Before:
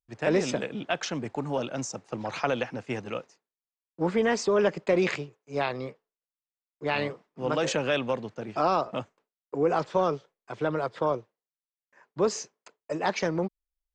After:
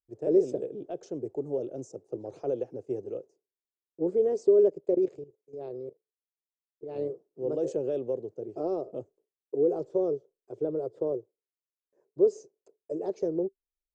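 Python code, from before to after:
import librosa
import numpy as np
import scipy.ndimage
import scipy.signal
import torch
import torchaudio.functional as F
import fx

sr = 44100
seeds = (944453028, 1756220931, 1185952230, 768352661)

y = fx.curve_eq(x, sr, hz=(140.0, 220.0, 390.0, 690.0, 970.0, 2000.0, 3900.0, 6500.0, 10000.0), db=(0, -6, 14, -2, -16, -25, -19, -9, -5))
y = fx.level_steps(y, sr, step_db=15, at=(4.69, 6.96))
y = y * librosa.db_to_amplitude(-8.0)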